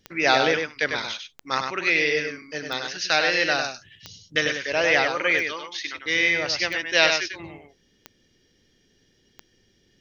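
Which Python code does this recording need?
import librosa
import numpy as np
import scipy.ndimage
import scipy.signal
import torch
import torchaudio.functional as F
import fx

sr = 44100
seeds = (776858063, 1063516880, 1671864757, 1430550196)

y = fx.fix_declick_ar(x, sr, threshold=10.0)
y = fx.fix_echo_inverse(y, sr, delay_ms=99, level_db=-5.5)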